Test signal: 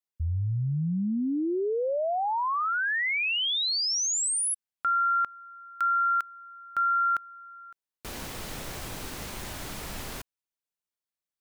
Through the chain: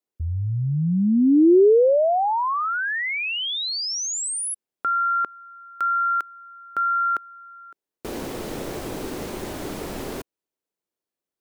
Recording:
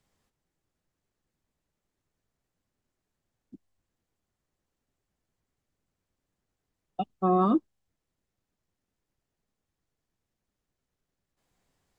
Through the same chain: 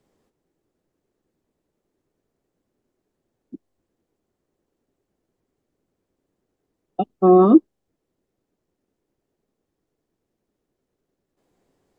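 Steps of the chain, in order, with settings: bell 370 Hz +14.5 dB 2 oct

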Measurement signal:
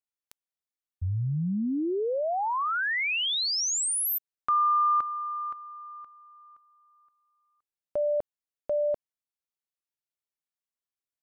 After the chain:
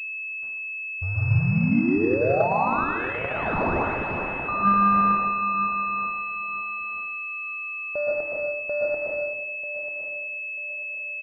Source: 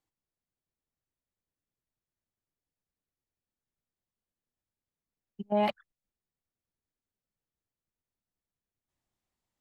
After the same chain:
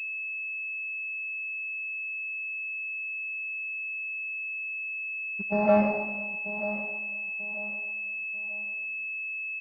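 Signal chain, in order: short-mantissa float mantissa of 2-bit; feedback echo 0.94 s, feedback 31%, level -12.5 dB; plate-style reverb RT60 1.2 s, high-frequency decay 0.9×, pre-delay 0.105 s, DRR -5.5 dB; pulse-width modulation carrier 2600 Hz

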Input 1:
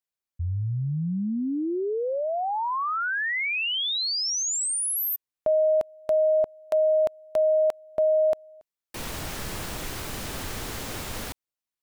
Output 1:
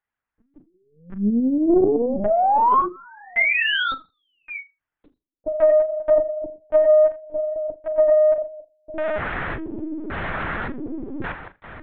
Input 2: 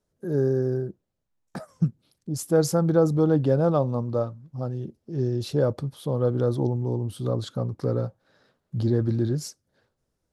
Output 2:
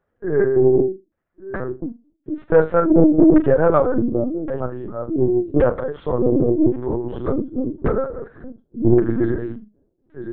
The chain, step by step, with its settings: reverse delay 0.574 s, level -11 dB; LFO low-pass square 0.89 Hz 310–1700 Hz; in parallel at -3.5 dB: soft clip -14.5 dBFS; on the sum: Chebyshev high-pass 200 Hz, order 8; on a send: flutter echo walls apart 6.7 m, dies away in 0.23 s; on the sum: LPC vocoder at 8 kHz pitch kept; Doppler distortion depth 0.26 ms; gain +3.5 dB

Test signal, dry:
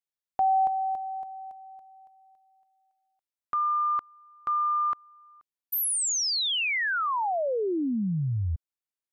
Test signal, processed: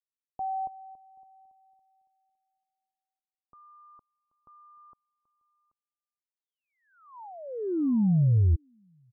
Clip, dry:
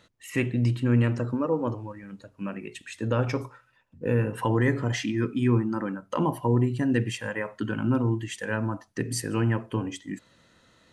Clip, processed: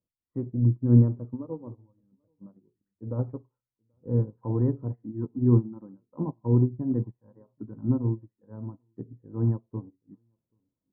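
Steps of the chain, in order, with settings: steep low-pass 970 Hz 36 dB/oct; bell 720 Hz -9.5 dB 1.6 oct; on a send: echo 0.782 s -20.5 dB; on the sum: upward expander 2.5:1, over -40 dBFS; gain +7.5 dB

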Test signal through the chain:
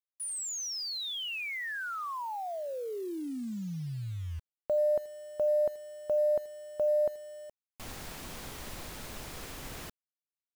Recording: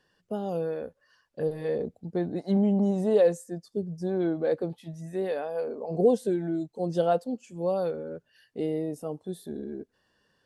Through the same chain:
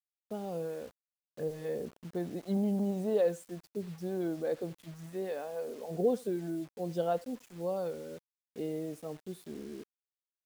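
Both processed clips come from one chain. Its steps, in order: speakerphone echo 80 ms, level -21 dB; bit-crush 8-bit; gain -7 dB

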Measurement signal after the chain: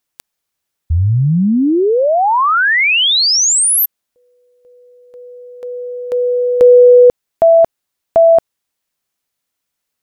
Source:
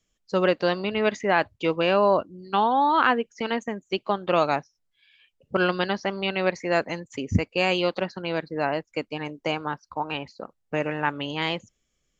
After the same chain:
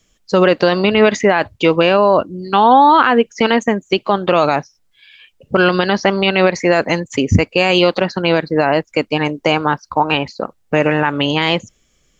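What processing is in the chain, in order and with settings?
maximiser +16 dB; gain -1 dB

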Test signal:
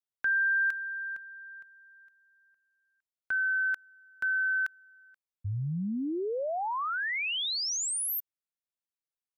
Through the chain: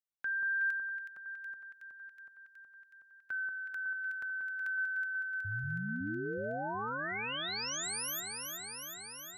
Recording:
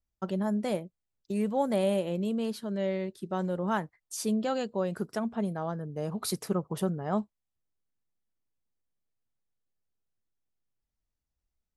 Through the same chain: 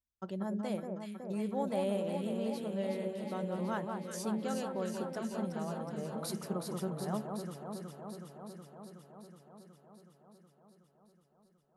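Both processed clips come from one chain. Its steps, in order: HPF 46 Hz 6 dB/oct; echo with dull and thin repeats by turns 0.185 s, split 1500 Hz, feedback 86%, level -4 dB; gain -8 dB

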